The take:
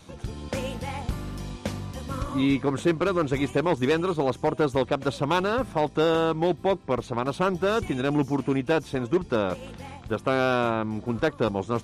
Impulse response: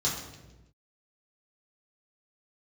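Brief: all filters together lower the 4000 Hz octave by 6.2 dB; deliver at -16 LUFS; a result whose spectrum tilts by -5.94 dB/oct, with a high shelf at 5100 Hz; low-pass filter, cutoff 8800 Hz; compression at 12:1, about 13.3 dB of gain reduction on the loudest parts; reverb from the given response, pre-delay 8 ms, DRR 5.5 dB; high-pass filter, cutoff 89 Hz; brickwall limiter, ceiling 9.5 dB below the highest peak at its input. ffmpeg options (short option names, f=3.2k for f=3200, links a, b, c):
-filter_complex "[0:a]highpass=89,lowpass=8.8k,equalizer=f=4k:t=o:g=-5,highshelf=f=5.1k:g=-6.5,acompressor=threshold=-32dB:ratio=12,alimiter=level_in=4.5dB:limit=-24dB:level=0:latency=1,volume=-4.5dB,asplit=2[a][b];[1:a]atrim=start_sample=2205,adelay=8[c];[b][c]afir=irnorm=-1:irlink=0,volume=-13.5dB[d];[a][d]amix=inputs=2:normalize=0,volume=21.5dB"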